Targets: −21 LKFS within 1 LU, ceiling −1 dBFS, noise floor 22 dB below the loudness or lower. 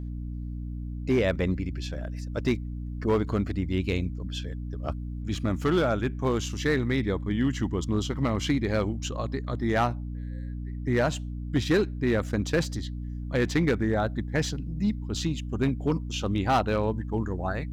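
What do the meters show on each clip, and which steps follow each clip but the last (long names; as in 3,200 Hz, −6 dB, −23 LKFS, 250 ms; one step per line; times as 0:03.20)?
share of clipped samples 0.6%; peaks flattened at −17.0 dBFS; mains hum 60 Hz; hum harmonics up to 300 Hz; level of the hum −32 dBFS; integrated loudness −28.5 LKFS; sample peak −17.0 dBFS; target loudness −21.0 LKFS
→ clipped peaks rebuilt −17 dBFS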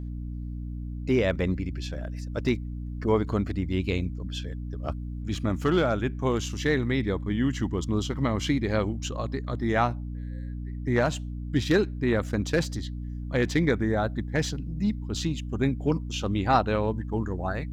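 share of clipped samples 0.0%; mains hum 60 Hz; hum harmonics up to 300 Hz; level of the hum −32 dBFS
→ mains-hum notches 60/120/180/240/300 Hz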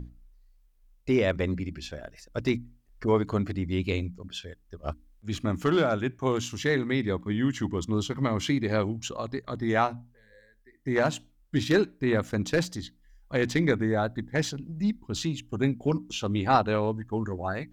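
mains hum none found; integrated loudness −28.5 LKFS; sample peak −9.0 dBFS; target loudness −21.0 LKFS
→ level +7.5 dB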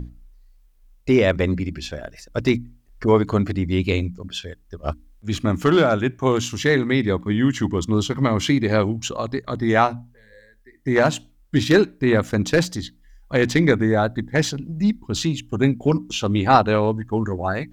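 integrated loudness −21.0 LKFS; sample peak −1.5 dBFS; background noise floor −55 dBFS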